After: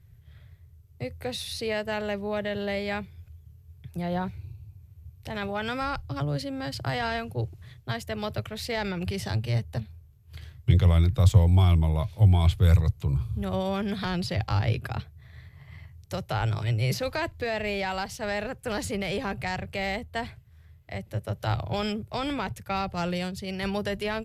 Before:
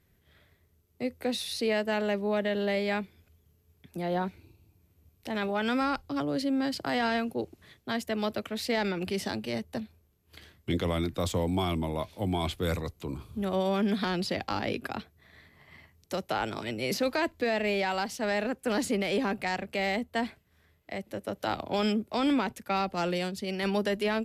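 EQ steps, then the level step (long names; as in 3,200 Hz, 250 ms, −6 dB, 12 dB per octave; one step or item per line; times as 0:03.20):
low shelf with overshoot 170 Hz +12 dB, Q 3
0.0 dB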